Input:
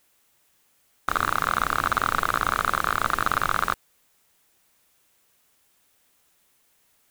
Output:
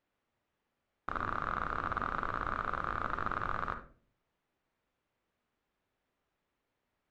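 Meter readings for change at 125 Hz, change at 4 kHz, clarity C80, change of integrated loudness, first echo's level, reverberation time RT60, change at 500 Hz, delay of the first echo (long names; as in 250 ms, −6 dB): −7.0 dB, −20.5 dB, 15.0 dB, −11.5 dB, no echo audible, 0.45 s, −9.0 dB, no echo audible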